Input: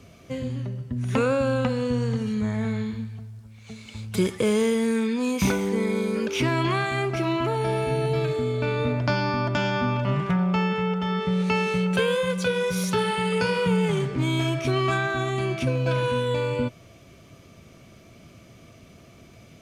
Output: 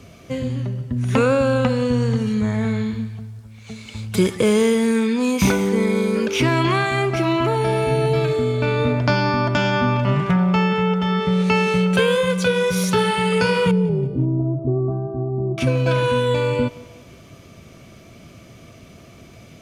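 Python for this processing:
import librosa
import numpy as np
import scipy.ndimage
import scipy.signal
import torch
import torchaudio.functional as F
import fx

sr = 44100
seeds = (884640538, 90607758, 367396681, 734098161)

y = fx.gaussian_blur(x, sr, sigma=14.0, at=(13.71, 15.58))
y = fx.echo_feedback(y, sr, ms=180, feedback_pct=45, wet_db=-21.5)
y = y * librosa.db_to_amplitude(5.5)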